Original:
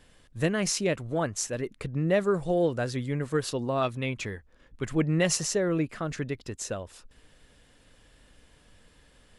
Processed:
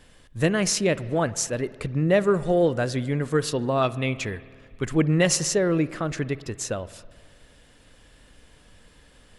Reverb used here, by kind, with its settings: spring tank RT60 1.8 s, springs 53 ms, chirp 25 ms, DRR 17 dB; gain +4.5 dB

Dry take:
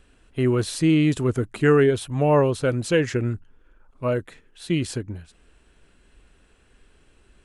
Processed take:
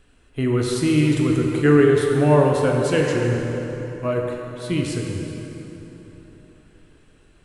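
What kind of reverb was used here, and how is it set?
plate-style reverb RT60 3.8 s, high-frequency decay 0.65×, DRR -0.5 dB; gain -1 dB

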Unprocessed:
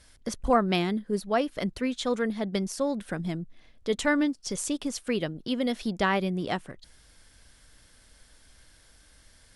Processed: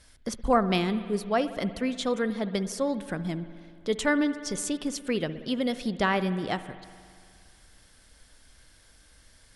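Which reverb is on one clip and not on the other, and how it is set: spring tank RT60 2.2 s, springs 59 ms, chirp 40 ms, DRR 12.5 dB

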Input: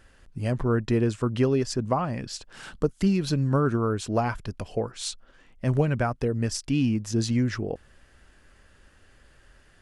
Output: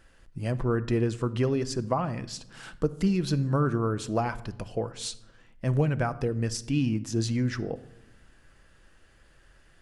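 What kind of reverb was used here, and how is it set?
shoebox room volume 2700 m³, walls furnished, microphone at 0.71 m; gain -2.5 dB

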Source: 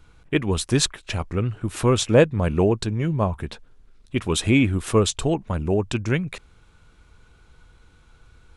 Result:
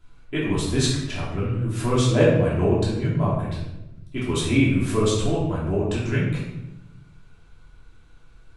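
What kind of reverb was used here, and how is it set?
shoebox room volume 340 m³, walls mixed, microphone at 3 m; gain -10 dB

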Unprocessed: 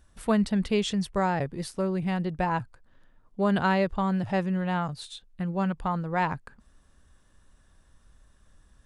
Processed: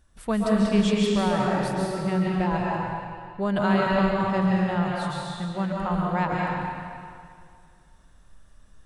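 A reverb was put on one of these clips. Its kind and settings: digital reverb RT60 2.2 s, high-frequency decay 0.9×, pre-delay 0.1 s, DRR -4 dB; gain -2 dB

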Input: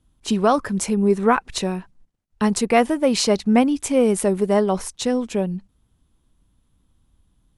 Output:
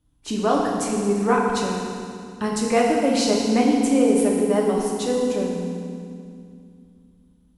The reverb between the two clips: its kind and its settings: FDN reverb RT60 2.3 s, low-frequency decay 1.5×, high-frequency decay 0.9×, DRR -2.5 dB; gain -6 dB

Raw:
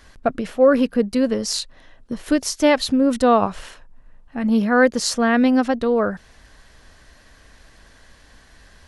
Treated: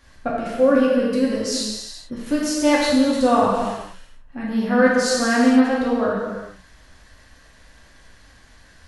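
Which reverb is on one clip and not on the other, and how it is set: non-linear reverb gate 0.49 s falling, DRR -6 dB; gain -7 dB

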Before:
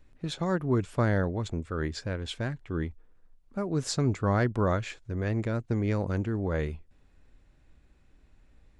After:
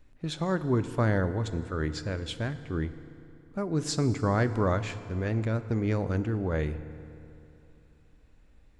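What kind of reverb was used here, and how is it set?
FDN reverb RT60 2.9 s, high-frequency decay 0.7×, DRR 11.5 dB

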